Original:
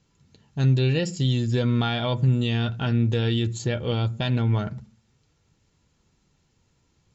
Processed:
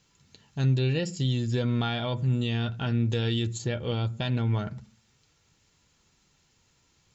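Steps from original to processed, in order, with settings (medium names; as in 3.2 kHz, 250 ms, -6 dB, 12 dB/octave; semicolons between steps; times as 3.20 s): 1.65–2.36 s: transient shaper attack -5 dB, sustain +1 dB; 3.10–3.58 s: treble shelf 4.8 kHz +7.5 dB; tape noise reduction on one side only encoder only; trim -4 dB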